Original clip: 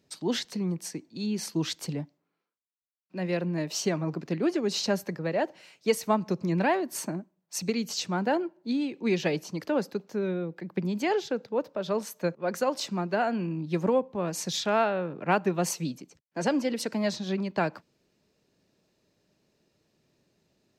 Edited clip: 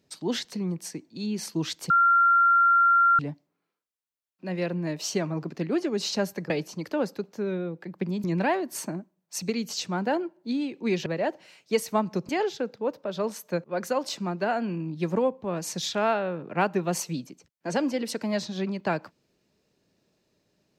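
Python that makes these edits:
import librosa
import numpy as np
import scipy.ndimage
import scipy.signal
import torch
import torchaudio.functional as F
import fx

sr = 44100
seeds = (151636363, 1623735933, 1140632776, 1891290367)

y = fx.edit(x, sr, fx.insert_tone(at_s=1.9, length_s=1.29, hz=1380.0, db=-16.0),
    fx.swap(start_s=5.21, length_s=1.23, other_s=9.26, other_length_s=1.74), tone=tone)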